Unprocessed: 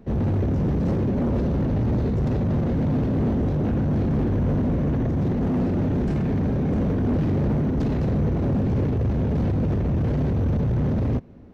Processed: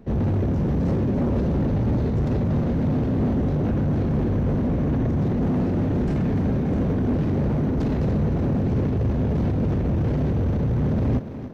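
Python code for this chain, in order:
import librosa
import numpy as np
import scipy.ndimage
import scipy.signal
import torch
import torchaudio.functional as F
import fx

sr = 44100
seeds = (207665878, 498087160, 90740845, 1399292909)

y = fx.rider(x, sr, range_db=3, speed_s=0.5)
y = fx.echo_thinned(y, sr, ms=292, feedback_pct=55, hz=150.0, wet_db=-10.0)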